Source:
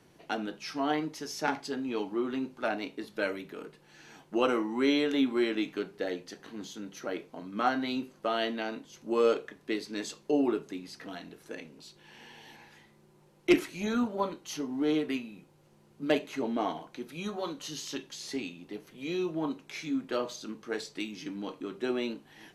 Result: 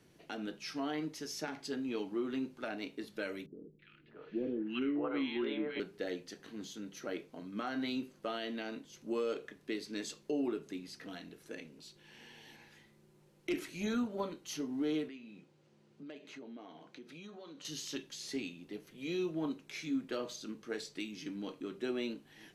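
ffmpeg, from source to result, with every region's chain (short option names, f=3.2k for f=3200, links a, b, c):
-filter_complex "[0:a]asettb=1/sr,asplit=3[a][b][c];[a]atrim=end=3.464[d];[b]atrim=start=3.46:end=5.8,asetpts=PTS-STARTPTS,afade=t=in:d=0.004:c=qsin,afade=t=out:st=2.336:d=0.004:c=qsin,lowpass=f=3.2k:w=0.5412,lowpass=f=3.2k:w=1.3066,acrossover=split=430|1600[e][f][g];[g]adelay=330[h];[f]adelay=620[i];[e][i][h]amix=inputs=3:normalize=0,atrim=end_sample=103194[j];[c]atrim=start=5.796[k];[d][j]acrossfade=d=0.004:c1=hsin:c2=qsin[l];[l][k]acrossfade=d=0.004:c1=qsin:c2=hsin,asettb=1/sr,asplit=3[m][n][o];[m]atrim=end=15.084[p];[n]atrim=start=15.08:end=17.65,asetpts=PTS-STARTPTS,afade=t=in:d=0.004:c=qsin,afade=t=out:st=2.566:d=0.004:c=qsin,acompressor=threshold=-44dB:ratio=4:attack=3.2:release=140:knee=1:detection=peak,highpass=140,lowpass=6k[q];[o]atrim=start=17.646[r];[p][q]acrossfade=d=0.004:c1=hsin:c2=qsin[s];[s][r]acrossfade=d=0.004:c1=qsin:c2=hsin,equalizer=f=900:w=1.3:g=-6,alimiter=limit=-23.5dB:level=0:latency=1:release=142,volume=-3dB"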